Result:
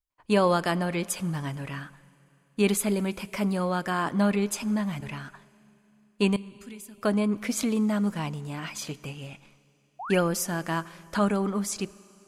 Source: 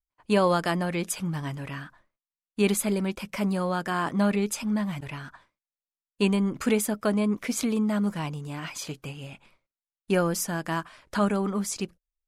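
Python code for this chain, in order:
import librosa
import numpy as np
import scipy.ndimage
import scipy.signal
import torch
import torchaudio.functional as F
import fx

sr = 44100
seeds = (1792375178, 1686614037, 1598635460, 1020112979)

y = fx.tone_stack(x, sr, knobs='6-0-2', at=(6.36, 6.98))
y = fx.spec_paint(y, sr, seeds[0], shape='rise', start_s=9.99, length_s=0.21, low_hz=660.0, high_hz=3400.0, level_db=-36.0)
y = fx.rev_schroeder(y, sr, rt60_s=3.1, comb_ms=33, drr_db=20.0)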